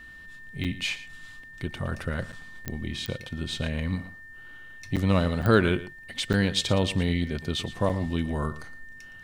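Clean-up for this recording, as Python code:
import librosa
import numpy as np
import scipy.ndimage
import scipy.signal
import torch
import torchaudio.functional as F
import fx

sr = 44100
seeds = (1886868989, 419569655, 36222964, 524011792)

y = fx.fix_declick_ar(x, sr, threshold=10.0)
y = fx.notch(y, sr, hz=1800.0, q=30.0)
y = fx.fix_interpolate(y, sr, at_s=(0.64, 2.32, 2.65, 3.07, 4.96, 5.42, 6.33, 7.89), length_ms=7.2)
y = fx.fix_echo_inverse(y, sr, delay_ms=115, level_db=-15.5)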